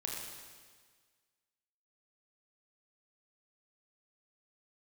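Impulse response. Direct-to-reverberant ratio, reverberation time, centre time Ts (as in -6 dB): -2.5 dB, 1.6 s, 85 ms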